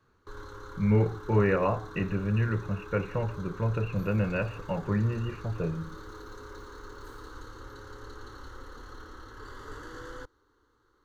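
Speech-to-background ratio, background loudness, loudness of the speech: 16.0 dB, -45.5 LUFS, -29.5 LUFS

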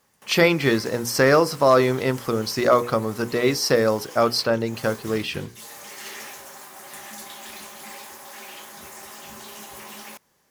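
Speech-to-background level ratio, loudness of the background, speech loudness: 18.5 dB, -39.5 LUFS, -21.0 LUFS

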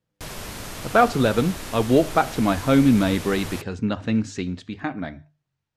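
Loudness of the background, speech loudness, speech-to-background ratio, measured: -34.5 LUFS, -22.0 LUFS, 12.5 dB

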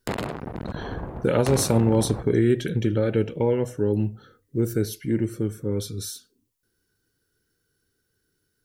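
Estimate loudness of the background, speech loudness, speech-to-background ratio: -33.5 LUFS, -24.0 LUFS, 9.5 dB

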